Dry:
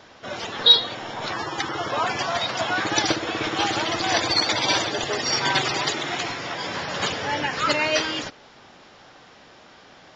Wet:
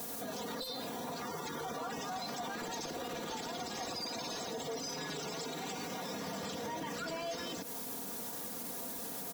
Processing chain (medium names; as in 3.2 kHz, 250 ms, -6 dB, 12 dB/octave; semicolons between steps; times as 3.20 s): word length cut 8-bit, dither triangular; high-pass 79 Hz; peaking EQ 2 kHz -14.5 dB 2.8 oct; saturation -23.5 dBFS, distortion -14 dB; compression 6:1, threshold -44 dBFS, peak gain reduction 16.5 dB; comb 4.6 ms, depth 77%; speed mistake 44.1 kHz file played as 48 kHz; peak limiter -41.5 dBFS, peak gain reduction 9.5 dB; trim +9.5 dB